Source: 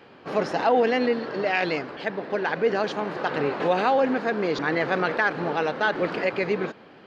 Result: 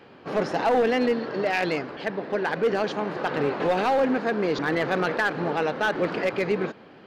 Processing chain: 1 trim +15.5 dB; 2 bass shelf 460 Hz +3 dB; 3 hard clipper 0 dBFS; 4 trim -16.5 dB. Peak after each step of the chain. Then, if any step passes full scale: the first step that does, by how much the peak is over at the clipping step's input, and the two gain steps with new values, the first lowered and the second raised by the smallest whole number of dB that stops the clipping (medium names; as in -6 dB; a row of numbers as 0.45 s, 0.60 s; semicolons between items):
+5.5 dBFS, +6.5 dBFS, 0.0 dBFS, -16.5 dBFS; step 1, 6.5 dB; step 1 +8.5 dB, step 4 -9.5 dB